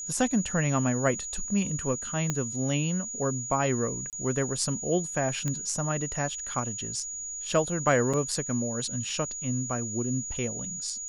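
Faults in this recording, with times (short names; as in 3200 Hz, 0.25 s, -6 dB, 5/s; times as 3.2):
tone 6800 Hz -34 dBFS
2.3 pop -14 dBFS
4.1–4.13 gap 28 ms
5.48 pop -17 dBFS
8.13–8.14 gap 5.7 ms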